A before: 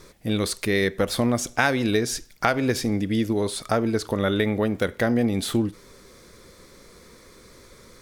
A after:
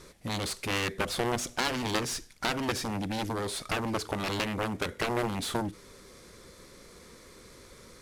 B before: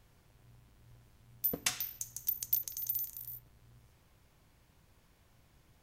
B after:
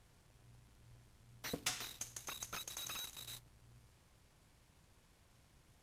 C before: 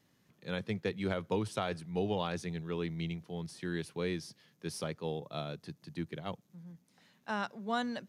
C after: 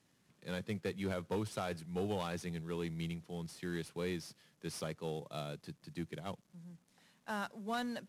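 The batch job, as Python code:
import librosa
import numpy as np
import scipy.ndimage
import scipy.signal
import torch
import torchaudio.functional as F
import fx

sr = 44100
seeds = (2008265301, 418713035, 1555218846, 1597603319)

y = fx.cvsd(x, sr, bps=64000)
y = fx.cheby_harmonics(y, sr, harmonics=(7,), levels_db=(-7,), full_scale_db=-8.0)
y = y * librosa.db_to_amplitude(-9.0)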